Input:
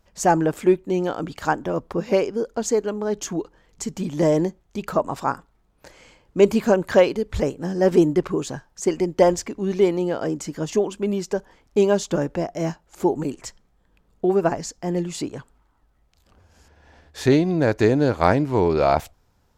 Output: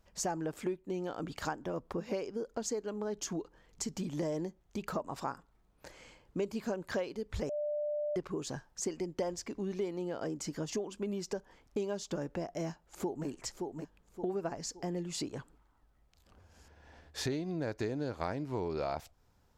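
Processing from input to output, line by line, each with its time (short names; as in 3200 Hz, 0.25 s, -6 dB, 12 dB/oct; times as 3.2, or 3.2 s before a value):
7.49–8.16 bleep 594 Hz -20 dBFS
12.64–13.27 echo throw 0.57 s, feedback 35%, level -10.5 dB
whole clip: dynamic EQ 5000 Hz, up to +5 dB, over -47 dBFS, Q 2.1; compressor 4:1, threshold -29 dBFS; gain -5.5 dB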